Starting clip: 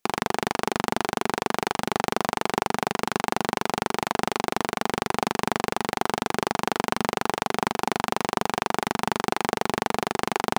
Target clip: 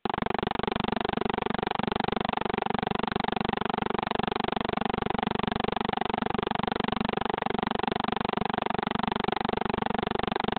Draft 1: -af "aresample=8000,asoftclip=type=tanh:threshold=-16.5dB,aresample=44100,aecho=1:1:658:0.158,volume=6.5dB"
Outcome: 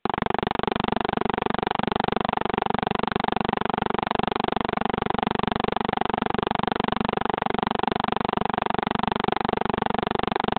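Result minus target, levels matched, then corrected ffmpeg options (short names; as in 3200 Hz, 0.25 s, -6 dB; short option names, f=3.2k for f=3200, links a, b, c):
soft clip: distortion -5 dB
-af "aresample=8000,asoftclip=type=tanh:threshold=-24.5dB,aresample=44100,aecho=1:1:658:0.158,volume=6.5dB"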